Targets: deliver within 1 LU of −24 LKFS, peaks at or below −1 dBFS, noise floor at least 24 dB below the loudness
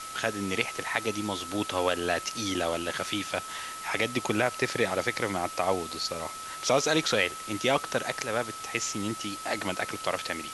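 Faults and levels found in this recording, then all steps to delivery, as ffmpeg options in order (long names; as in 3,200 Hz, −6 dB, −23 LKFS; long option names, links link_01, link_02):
interfering tone 1,300 Hz; level of the tone −39 dBFS; background noise floor −40 dBFS; target noise floor −54 dBFS; integrated loudness −29.5 LKFS; sample peak −7.5 dBFS; target loudness −24.0 LKFS
→ -af "bandreject=frequency=1300:width=30"
-af "afftdn=noise_reduction=14:noise_floor=-40"
-af "volume=5.5dB"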